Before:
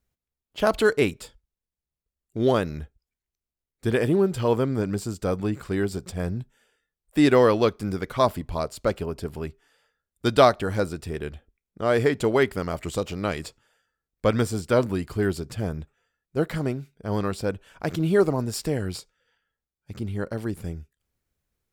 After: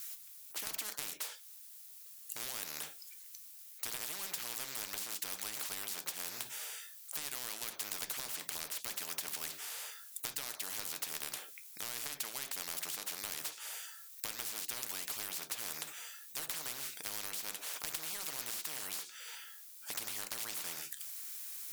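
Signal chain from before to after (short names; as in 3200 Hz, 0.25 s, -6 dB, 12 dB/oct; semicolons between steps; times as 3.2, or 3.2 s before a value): HPF 630 Hz 12 dB/oct; differentiator; compressor 10:1, threshold -51 dBFS, peak gain reduction 23 dB; reverb RT60 0.20 s, pre-delay 7 ms, DRR 8.5 dB; spectral compressor 10:1; gain +15.5 dB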